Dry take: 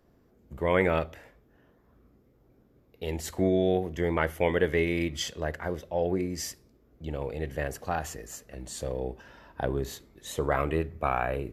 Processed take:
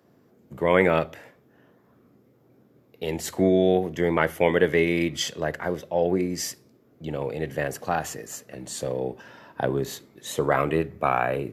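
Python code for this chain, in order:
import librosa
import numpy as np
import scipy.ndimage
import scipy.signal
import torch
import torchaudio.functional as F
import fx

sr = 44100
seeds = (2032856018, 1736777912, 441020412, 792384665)

y = scipy.signal.sosfilt(scipy.signal.butter(4, 110.0, 'highpass', fs=sr, output='sos'), x)
y = y * librosa.db_to_amplitude(5.0)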